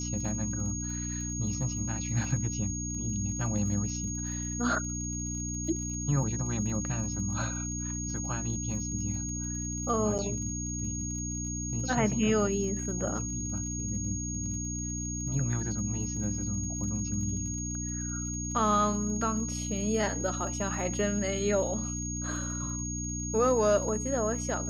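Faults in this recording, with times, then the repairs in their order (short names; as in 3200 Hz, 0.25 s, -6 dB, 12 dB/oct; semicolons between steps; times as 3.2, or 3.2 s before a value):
crackle 47/s -41 dBFS
hum 60 Hz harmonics 5 -36 dBFS
tone 6600 Hz -36 dBFS
10.18–10.19 gap 7.3 ms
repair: de-click; de-hum 60 Hz, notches 5; notch 6600 Hz, Q 30; interpolate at 10.18, 7.3 ms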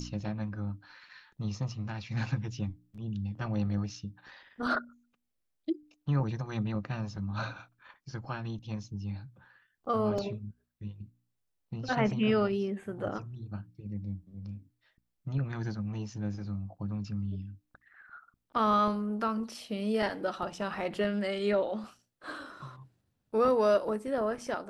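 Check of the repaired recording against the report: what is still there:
none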